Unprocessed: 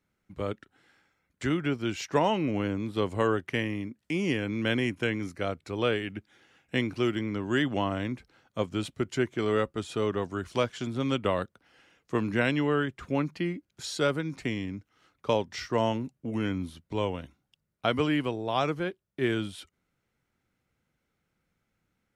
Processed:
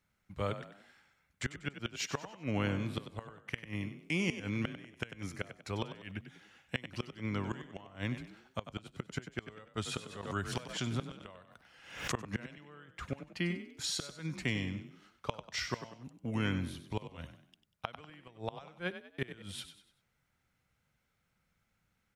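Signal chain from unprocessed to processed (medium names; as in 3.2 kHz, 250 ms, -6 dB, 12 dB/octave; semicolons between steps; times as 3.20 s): inverted gate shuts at -19 dBFS, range -25 dB; peaking EQ 330 Hz -9 dB 1.3 oct; frequency-shifting echo 96 ms, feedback 38%, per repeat +34 Hz, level -11 dB; 9.83–12.28 s: swell ahead of each attack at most 84 dB/s; trim +1 dB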